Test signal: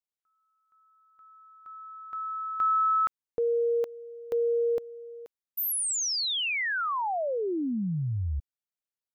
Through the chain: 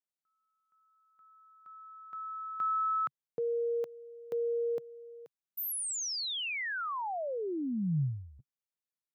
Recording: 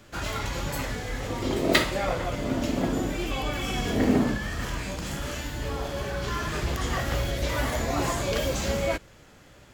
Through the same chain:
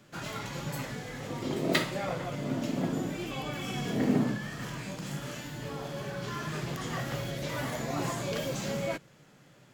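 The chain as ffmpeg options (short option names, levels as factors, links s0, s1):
-af "lowshelf=f=100:t=q:w=3:g=-11.5,volume=0.473"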